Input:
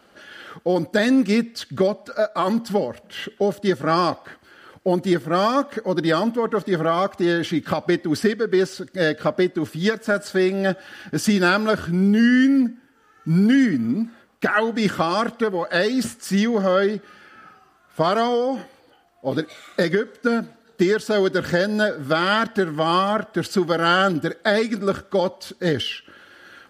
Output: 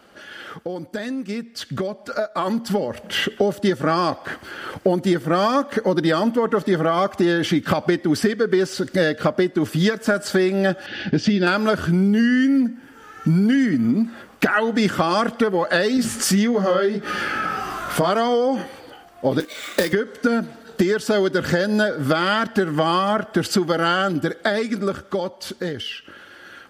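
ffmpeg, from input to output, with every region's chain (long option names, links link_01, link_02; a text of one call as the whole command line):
ffmpeg -i in.wav -filter_complex "[0:a]asettb=1/sr,asplit=3[link_01][link_02][link_03];[link_01]atrim=end=10.864[link_04];[link_02]atrim=start=10.86:end=11.47,asetpts=PTS-STARTPTS,afade=type=in:duration=0.004:curve=qsin,afade=type=out:start_time=0.606:duration=0.004:curve=qsin,lowpass=frequency=4500:width=0.5412,lowpass=frequency=4500:width=1.3066,equalizer=frequency=1100:width=1.6:gain=-13.5,asoftclip=type=hard:threshold=-10dB[link_05];[link_03]atrim=start=11.466[link_06];[link_04][link_05]acrossfade=duration=0.004:curve1=hsin:curve2=qsin[link_07];[link_07][link_06]acrossfade=duration=0.004:curve1=qsin:curve2=hsin,asettb=1/sr,asplit=3[link_08][link_09][link_10];[link_08]atrim=end=15.974[link_11];[link_09]atrim=start=15.97:end=18.1,asetpts=PTS-STARTPTS,afade=type=in:duration=0.004:curve=qsin,afade=type=out:start_time=2.126:duration=0.004:curve=qsin,flanger=delay=16:depth=7.2:speed=1.7,acompressor=mode=upward:threshold=-25dB:ratio=2.5:attack=3.2:release=140:knee=2.83:detection=peak[link_12];[link_10]atrim=start=18.096[link_13];[link_11][link_12]acrossfade=duration=0.004:curve1=hsin:curve2=qsin[link_14];[link_14][link_13]acrossfade=duration=0.004:curve1=qsin:curve2=hsin,asettb=1/sr,asplit=3[link_15][link_16][link_17];[link_15]atrim=end=19.404[link_18];[link_16]atrim=start=19.4:end=19.93,asetpts=PTS-STARTPTS,afade=type=in:duration=0.004:curve=qsin,afade=type=out:start_time=0.526:duration=0.004:curve=qsin,highpass=frequency=210:width=0.5412,highpass=frequency=210:width=1.3066,equalizer=frequency=340:width_type=q:width=4:gain=-4,equalizer=frequency=730:width_type=q:width=4:gain=-8,equalizer=frequency=1300:width_type=q:width=4:gain=-8,lowpass=frequency=9200:width=0.5412,lowpass=frequency=9200:width=1.3066,acrusher=bits=2:mode=log:mix=0:aa=0.000001[link_19];[link_17]atrim=start=19.926[link_20];[link_18][link_19]acrossfade=duration=0.004:curve1=hsin:curve2=qsin[link_21];[link_21][link_20]acrossfade=duration=0.004:curve1=qsin:curve2=hsin,acompressor=threshold=-31dB:ratio=5,bandreject=frequency=4100:width=26,dynaudnorm=framelen=380:gausssize=13:maxgain=11dB,volume=3dB" out.wav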